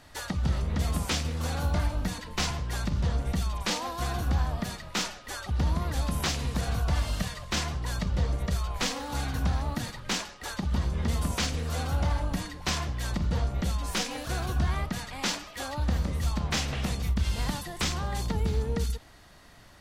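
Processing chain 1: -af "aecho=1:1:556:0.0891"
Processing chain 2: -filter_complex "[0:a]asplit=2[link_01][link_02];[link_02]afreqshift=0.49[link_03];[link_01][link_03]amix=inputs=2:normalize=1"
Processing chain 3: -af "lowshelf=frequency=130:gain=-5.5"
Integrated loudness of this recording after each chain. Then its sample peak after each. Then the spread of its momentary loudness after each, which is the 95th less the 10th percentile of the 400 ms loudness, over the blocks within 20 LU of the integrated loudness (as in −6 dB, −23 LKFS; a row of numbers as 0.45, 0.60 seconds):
−30.5, −33.5, −32.5 LKFS; −15.0, −17.0, −16.0 dBFS; 4, 6, 4 LU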